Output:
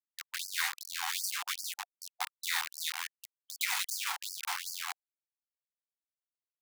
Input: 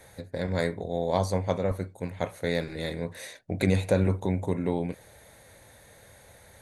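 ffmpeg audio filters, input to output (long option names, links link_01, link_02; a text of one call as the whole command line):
ffmpeg -i in.wav -filter_complex "[0:a]asettb=1/sr,asplit=3[link_01][link_02][link_03];[link_01]atrim=end=0.954[link_04];[link_02]atrim=start=0.95:end=2.4,asetpts=PTS-STARTPTS,afade=type=in:duration=0.004:curve=qsin,afade=type=out:start_time=1.446:duration=0.004:curve=qsin,equalizer=frequency=230:width=1.3:gain=-9[link_05];[link_03]atrim=start=2.396[link_06];[link_04][link_05]acrossfade=duration=0.004:curve1=hsin:curve2=qsin[link_07];[link_07][link_06]acrossfade=duration=0.004:curve1=qsin:curve2=hsin,acrusher=bits=4:mix=0:aa=0.000001,afftfilt=real='re*gte(b*sr/1024,700*pow(4500/700,0.5+0.5*sin(2*PI*2.6*pts/sr)))':imag='im*gte(b*sr/1024,700*pow(4500/700,0.5+0.5*sin(2*PI*2.6*pts/sr)))':win_size=1024:overlap=0.75,volume=1.5dB" out.wav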